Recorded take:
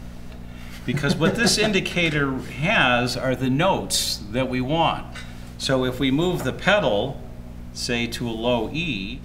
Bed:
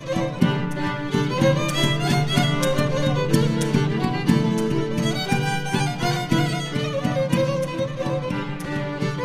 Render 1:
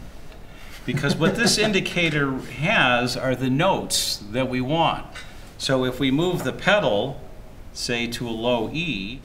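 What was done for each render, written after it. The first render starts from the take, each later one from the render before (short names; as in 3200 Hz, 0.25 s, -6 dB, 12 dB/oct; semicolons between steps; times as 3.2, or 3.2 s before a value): de-hum 60 Hz, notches 4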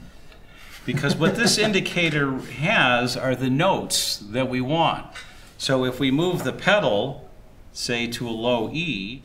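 noise print and reduce 6 dB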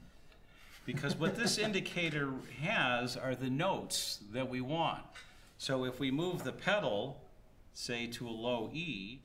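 gain -14 dB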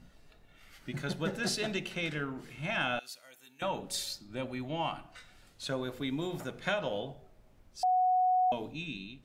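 2.99–3.62 differentiator; 7.83–8.52 bleep 737 Hz -23.5 dBFS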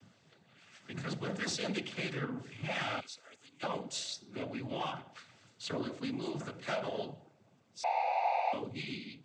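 soft clip -29.5 dBFS, distortion -12 dB; noise vocoder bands 16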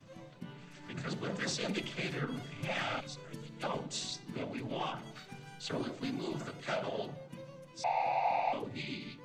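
add bed -28 dB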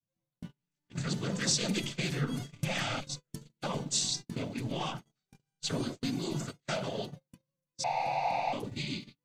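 tone controls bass +8 dB, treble +13 dB; gate -37 dBFS, range -42 dB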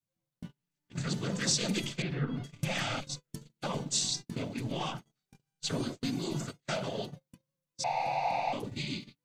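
2.02–2.44 air absorption 350 m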